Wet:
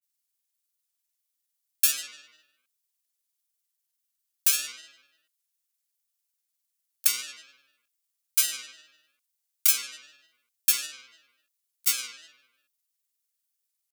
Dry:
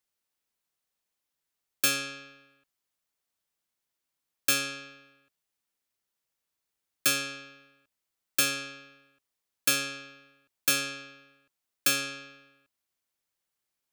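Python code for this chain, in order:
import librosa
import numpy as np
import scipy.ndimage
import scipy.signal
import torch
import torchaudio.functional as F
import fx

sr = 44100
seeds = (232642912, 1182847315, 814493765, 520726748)

y = fx.granulator(x, sr, seeds[0], grain_ms=100.0, per_s=20.0, spray_ms=22.0, spread_st=3)
y = scipy.signal.lfilter([1.0, -0.97], [1.0], y)
y = F.gain(torch.from_numpy(y), 5.5).numpy()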